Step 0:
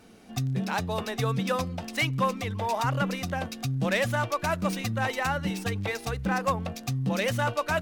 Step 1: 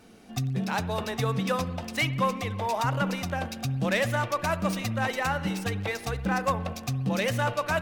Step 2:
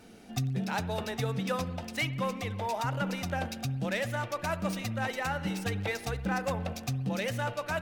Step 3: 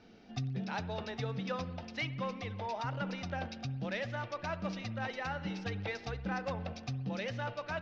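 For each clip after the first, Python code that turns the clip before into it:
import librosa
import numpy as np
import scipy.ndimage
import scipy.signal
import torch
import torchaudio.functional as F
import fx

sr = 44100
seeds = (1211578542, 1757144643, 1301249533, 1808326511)

y1 = fx.rev_spring(x, sr, rt60_s=1.6, pass_ms=(58,), chirp_ms=75, drr_db=13.5)
y2 = fx.notch(y1, sr, hz=1100.0, q=10.0)
y2 = fx.rider(y2, sr, range_db=5, speed_s=0.5)
y2 = y2 * librosa.db_to_amplitude(-4.0)
y3 = scipy.signal.sosfilt(scipy.signal.butter(8, 5700.0, 'lowpass', fs=sr, output='sos'), y2)
y3 = y3 * librosa.db_to_amplitude(-5.5)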